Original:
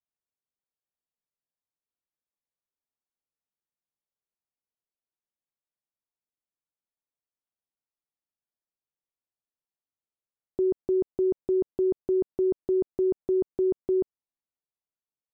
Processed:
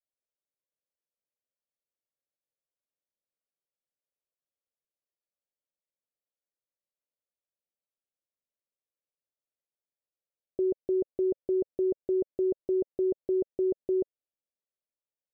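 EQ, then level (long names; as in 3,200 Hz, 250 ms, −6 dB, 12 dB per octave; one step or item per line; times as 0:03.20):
low-pass with resonance 560 Hz, resonance Q 4
−7.5 dB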